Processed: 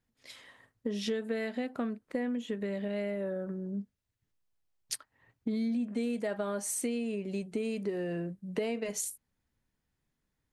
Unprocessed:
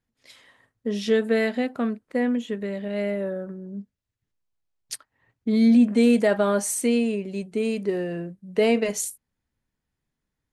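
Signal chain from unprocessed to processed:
downward compressor 6 to 1, threshold −31 dBFS, peak gain reduction 16.5 dB

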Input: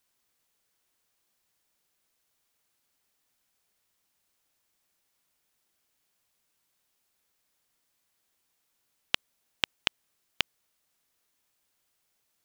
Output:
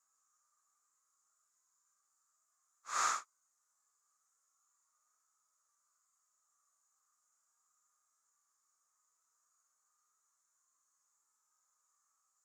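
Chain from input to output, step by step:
extreme stretch with random phases 8.3×, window 0.05 s, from 0:10.04
pair of resonant band-passes 2,900 Hz, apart 2.5 octaves
level +8.5 dB

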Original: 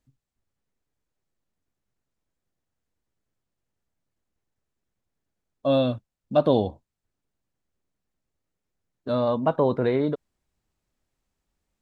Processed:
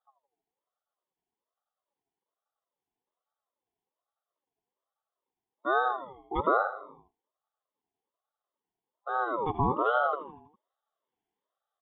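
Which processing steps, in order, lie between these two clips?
inverse Chebyshev band-stop filter 710–1,500 Hz, stop band 40 dB
brick-wall band-pass 100–3,000 Hz
repeating echo 81 ms, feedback 52%, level −12 dB
ring modulator whose carrier an LFO sweeps 780 Hz, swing 30%, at 1.2 Hz

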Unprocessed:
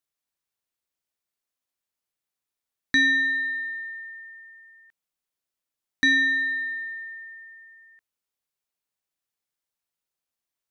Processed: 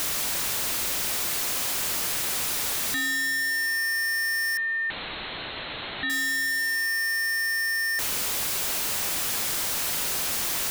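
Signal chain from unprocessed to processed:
sign of each sample alone
0:04.57–0:06.10: Chebyshev low-pass filter 4,200 Hz, order 10
level +5 dB

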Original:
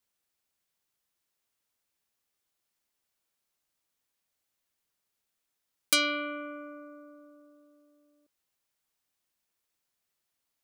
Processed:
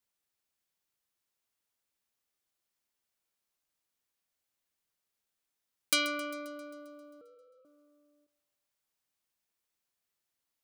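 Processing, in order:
0:07.21–0:07.65: three sine waves on the formant tracks
feedback echo with a high-pass in the loop 133 ms, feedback 64%, high-pass 510 Hz, level −16 dB
every ending faded ahead of time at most 280 dB per second
level −3.5 dB

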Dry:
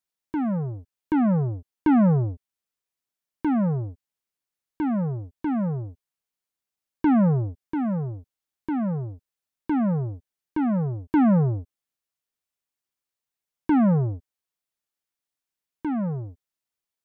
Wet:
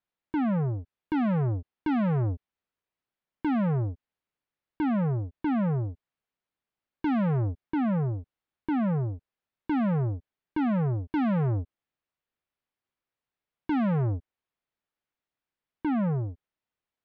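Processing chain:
downward compressor, threshold −21 dBFS, peak gain reduction 4.5 dB
soft clipping −28 dBFS, distortion −13 dB
high-frequency loss of the air 300 metres
level +4.5 dB

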